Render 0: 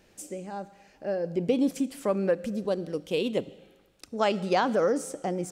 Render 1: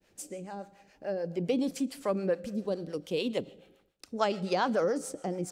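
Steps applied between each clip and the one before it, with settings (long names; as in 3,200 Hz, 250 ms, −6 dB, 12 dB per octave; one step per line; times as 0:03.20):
downward expander −57 dBFS
dynamic equaliser 4,500 Hz, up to +5 dB, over −57 dBFS, Q 3.3
two-band tremolo in antiphase 7 Hz, depth 70%, crossover 500 Hz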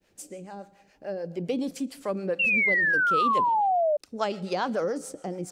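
sound drawn into the spectrogram fall, 0:02.39–0:03.97, 580–2,800 Hz −23 dBFS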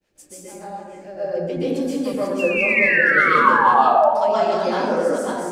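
delay that plays each chunk backwards 288 ms, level −3 dB
dense smooth reverb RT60 1.2 s, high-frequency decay 0.5×, pre-delay 110 ms, DRR −10 dB
level −4.5 dB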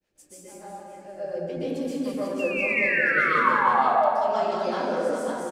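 repeating echo 199 ms, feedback 51%, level −8 dB
level −7 dB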